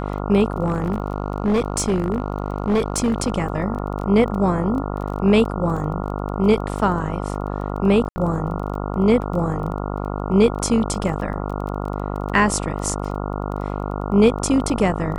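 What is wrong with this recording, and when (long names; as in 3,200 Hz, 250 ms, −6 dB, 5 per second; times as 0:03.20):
mains buzz 50 Hz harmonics 28 −26 dBFS
surface crackle 17 per second −29 dBFS
0:00.62–0:03.32: clipping −14.5 dBFS
0:08.09–0:08.16: drop-out 70 ms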